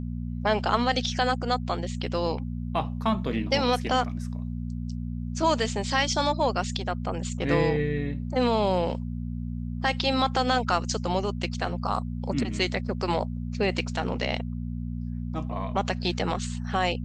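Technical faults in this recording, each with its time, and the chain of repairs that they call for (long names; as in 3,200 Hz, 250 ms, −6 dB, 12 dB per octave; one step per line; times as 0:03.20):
mains hum 60 Hz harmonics 4 −32 dBFS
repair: hum removal 60 Hz, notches 4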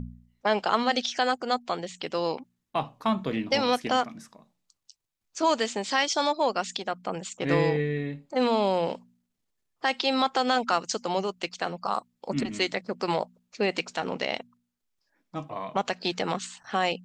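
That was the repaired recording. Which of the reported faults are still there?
none of them is left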